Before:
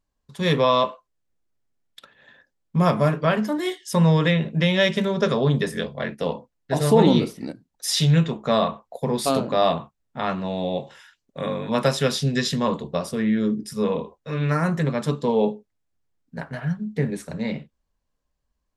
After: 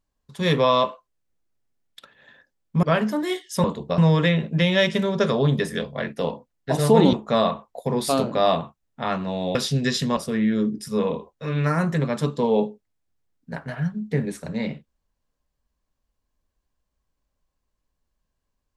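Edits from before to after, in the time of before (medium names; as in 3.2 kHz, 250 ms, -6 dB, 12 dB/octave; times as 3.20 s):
2.83–3.19 s: delete
7.15–8.30 s: delete
10.72–12.06 s: delete
12.68–13.02 s: move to 4.00 s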